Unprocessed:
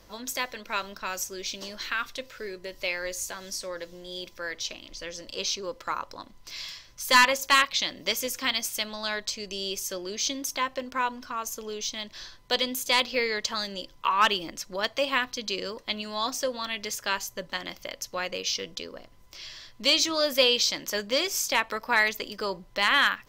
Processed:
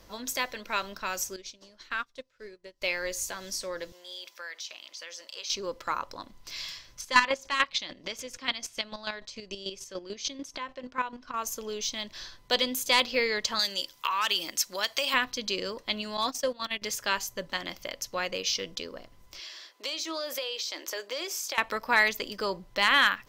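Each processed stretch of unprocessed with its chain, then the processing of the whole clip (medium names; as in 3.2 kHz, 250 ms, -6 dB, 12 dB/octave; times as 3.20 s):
1.36–2.82 s: low-pass 9.6 kHz + dynamic bell 2.6 kHz, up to -5 dB, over -44 dBFS, Q 0.99 + upward expansion 2.5:1, over -47 dBFS
3.92–5.50 s: high-pass 790 Hz + compression 2.5:1, threshold -38 dBFS
7.01–11.34 s: square tremolo 6.8 Hz, depth 65%, duty 25% + distance through air 70 m
13.59–15.14 s: compression 4:1, threshold -26 dBFS + tilt EQ +3.5 dB/octave
16.17–16.82 s: gate -34 dBFS, range -15 dB + hard clipper -18 dBFS
19.40–21.58 s: Chebyshev high-pass 330 Hz, order 4 + compression 8:1, threshold -30 dBFS
whole clip: none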